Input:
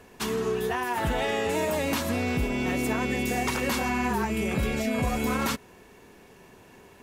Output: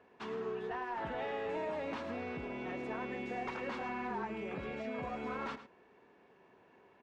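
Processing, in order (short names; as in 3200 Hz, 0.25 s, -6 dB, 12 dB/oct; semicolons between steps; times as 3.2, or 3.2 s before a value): HPF 580 Hz 6 dB/oct; one-sided clip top -25.5 dBFS; tape spacing loss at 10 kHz 38 dB; on a send: echo 0.107 s -13 dB; on the sum: gain -4.5 dB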